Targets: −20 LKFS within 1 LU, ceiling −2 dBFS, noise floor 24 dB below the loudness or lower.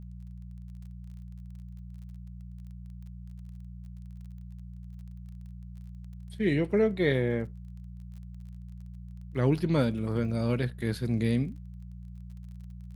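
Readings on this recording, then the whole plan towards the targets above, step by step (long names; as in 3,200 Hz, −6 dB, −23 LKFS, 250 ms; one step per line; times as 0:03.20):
crackle rate 28 per second; mains hum 60 Hz; hum harmonics up to 180 Hz; level of the hum −41 dBFS; integrated loudness −28.5 LKFS; sample peak −12.5 dBFS; target loudness −20.0 LKFS
→ click removal
hum removal 60 Hz, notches 3
level +8.5 dB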